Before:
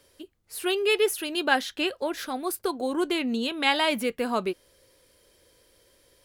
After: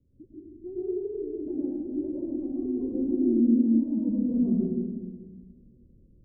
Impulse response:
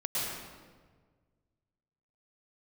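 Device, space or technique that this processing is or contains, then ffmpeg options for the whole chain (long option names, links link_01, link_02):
club heard from the street: -filter_complex "[0:a]alimiter=limit=-17dB:level=0:latency=1:release=132,lowpass=frequency=240:width=0.5412,lowpass=frequency=240:width=1.3066[link_01];[1:a]atrim=start_sample=2205[link_02];[link_01][link_02]afir=irnorm=-1:irlink=0,volume=6dB"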